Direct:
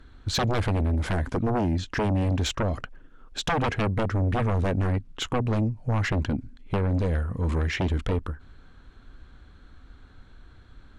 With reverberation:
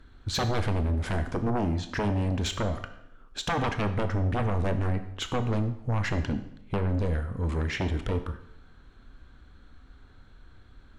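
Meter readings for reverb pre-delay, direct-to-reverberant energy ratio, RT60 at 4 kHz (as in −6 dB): 20 ms, 8.5 dB, 0.70 s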